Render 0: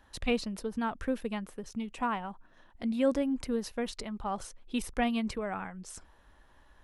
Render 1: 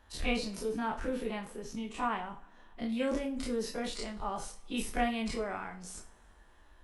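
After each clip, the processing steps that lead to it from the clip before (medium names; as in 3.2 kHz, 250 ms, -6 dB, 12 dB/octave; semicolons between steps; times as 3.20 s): every event in the spectrogram widened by 60 ms; two-slope reverb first 0.32 s, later 2.5 s, from -27 dB, DRR 4 dB; trim -5.5 dB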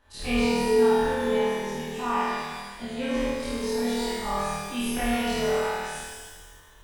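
on a send: flutter echo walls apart 4.3 m, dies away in 1.2 s; on the sum: pitch-shifted reverb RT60 1.4 s, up +12 st, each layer -8 dB, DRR -1.5 dB; trim -2.5 dB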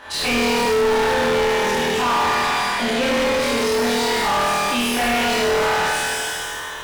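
overdrive pedal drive 36 dB, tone 3.6 kHz, clips at -10.5 dBFS; trim -1.5 dB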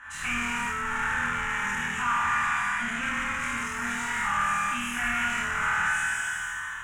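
FFT filter 110 Hz 0 dB, 210 Hz -4 dB, 480 Hz -26 dB, 1.4 kHz +7 dB, 2.8 kHz -3 dB, 4.5 kHz -24 dB, 6.9 kHz +2 dB, 14 kHz -14 dB; trim -6.5 dB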